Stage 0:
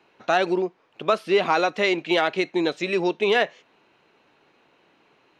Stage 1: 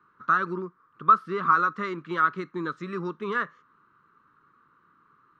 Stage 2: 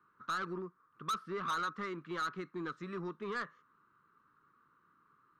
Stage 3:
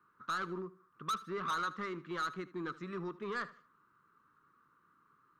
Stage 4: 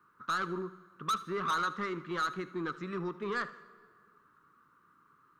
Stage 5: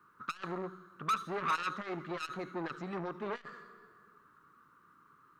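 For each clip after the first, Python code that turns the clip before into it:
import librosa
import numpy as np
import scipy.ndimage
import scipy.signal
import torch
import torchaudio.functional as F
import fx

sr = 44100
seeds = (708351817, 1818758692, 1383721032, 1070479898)

y1 = fx.curve_eq(x, sr, hz=(170.0, 490.0, 740.0, 1200.0, 2500.0, 3600.0), db=(0, -14, -28, 12, -22, -18))
y2 = 10.0 ** (-24.0 / 20.0) * np.tanh(y1 / 10.0 ** (-24.0 / 20.0))
y2 = y2 * 10.0 ** (-7.5 / 20.0)
y3 = fx.echo_feedback(y2, sr, ms=77, feedback_pct=32, wet_db=-18.0)
y4 = fx.rev_plate(y3, sr, seeds[0], rt60_s=2.0, hf_ratio=0.65, predelay_ms=0, drr_db=16.5)
y4 = y4 * 10.0 ** (4.0 / 20.0)
y5 = fx.transformer_sat(y4, sr, knee_hz=1000.0)
y5 = y5 * 10.0 ** (2.0 / 20.0)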